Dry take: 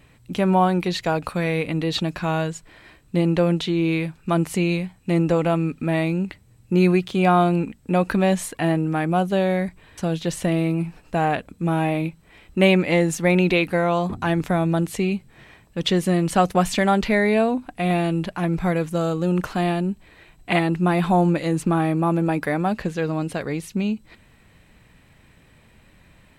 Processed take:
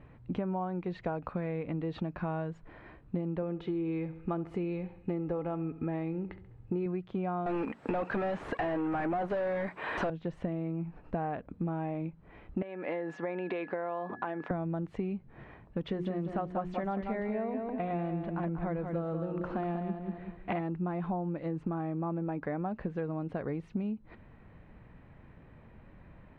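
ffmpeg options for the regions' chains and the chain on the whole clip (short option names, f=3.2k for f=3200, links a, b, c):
-filter_complex "[0:a]asettb=1/sr,asplit=3[a][b][c];[a]atrim=end=3.424[d];[b]atrim=start=3.42:end=6.86,asetpts=PTS-STARTPTS,afade=t=in:d=0.004:c=qsin,afade=t=out:st=3.436:d=0.004:c=qsin,aecho=1:1:2.4:0.38,atrim=end_sample=151704,aecho=1:1:68|136|204|272:0.126|0.0541|0.0233|0.01,atrim=end_sample=151704[e];[c]atrim=start=6.856[f];[d][e]acrossfade=d=0.004:c1=hsin:c2=qsin[g];[g][f]acrossfade=d=0.004:c1=qsin:c2=hsin,asettb=1/sr,asplit=3[h][i][j];[h]atrim=end=7.464[k];[i]atrim=start=7.46:end=10.1,asetpts=PTS-STARTPTS,afade=t=in:d=0.004:c=qsin,afade=t=out:st=2.636:d=0.004:c=qsin,aemphasis=mode=production:type=riaa,asplit=2[l][m];[m]highpass=f=720:p=1,volume=35dB,asoftclip=type=tanh:threshold=-6dB[n];[l][n]amix=inputs=2:normalize=0,lowpass=f=1.8k:p=1,volume=-6dB[o];[j]atrim=start=10.096[p];[k][o]acrossfade=d=0.004:c1=hsin:c2=qsin[q];[q][p]acrossfade=d=0.004:c1=qsin:c2=hsin,asettb=1/sr,asplit=3[r][s][t];[r]atrim=end=12.624[u];[s]atrim=start=12.62:end=14.51,asetpts=PTS-STARTPTS,afade=t=in:d=0.004:c=qsin,afade=t=out:st=1.886:d=0.004:c=qsin,acompressor=threshold=-20dB:ratio=10:attack=3.2:release=140:knee=1:detection=peak,aeval=exprs='val(0)+0.00794*sin(2*PI*1700*n/s)':c=same,highpass=400,lowpass=5.5k[v];[t]atrim=start=14.506[w];[u][v]acrossfade=d=0.004:c1=hsin:c2=qsin[x];[x][w]acrossfade=d=0.004:c1=qsin:c2=hsin,asettb=1/sr,asplit=3[y][z][aa];[y]atrim=end=15.844[ab];[z]atrim=start=15.84:end=20.61,asetpts=PTS-STARTPTS,afade=t=in:d=0.004:c=qsin,afade=t=out:st=4.766:d=0.004:c=qsin,bandreject=f=60:t=h:w=6,bandreject=f=120:t=h:w=6,bandreject=f=180:t=h:w=6,bandreject=f=240:t=h:w=6,bandreject=f=300:t=h:w=6,bandreject=f=360:t=h:w=6,bandreject=f=420:t=h:w=6,aecho=1:1:189|378|567:0.447|0.125|0.035,atrim=end_sample=210357[ac];[aa]atrim=start=20.606[ad];[ab][ac]acrossfade=d=0.004:c1=hsin:c2=qsin[ae];[ae][ad]acrossfade=d=0.004:c1=qsin:c2=hsin,lowpass=1.3k,acompressor=threshold=-31dB:ratio=8"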